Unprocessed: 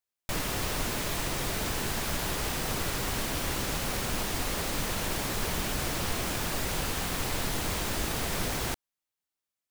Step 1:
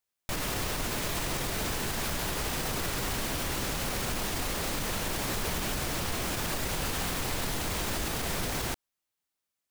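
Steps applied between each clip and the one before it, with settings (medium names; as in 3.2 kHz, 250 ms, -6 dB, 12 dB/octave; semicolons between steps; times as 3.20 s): peak limiter -25 dBFS, peak gain reduction 8 dB; trim +3 dB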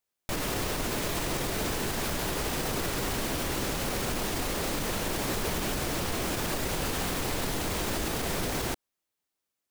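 peaking EQ 370 Hz +4.5 dB 1.8 oct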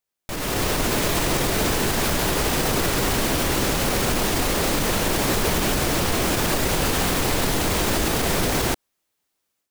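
level rider gain up to 9 dB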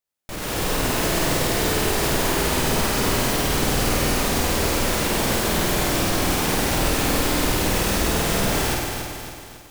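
flutter echo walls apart 8.6 m, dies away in 0.98 s; bit-crushed delay 274 ms, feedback 55%, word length 7-bit, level -6.5 dB; trim -3.5 dB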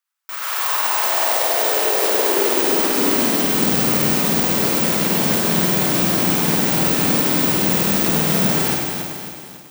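careless resampling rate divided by 2×, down none, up zero stuff; high-pass sweep 1.2 kHz -> 170 Hz, 0.43–3.93 s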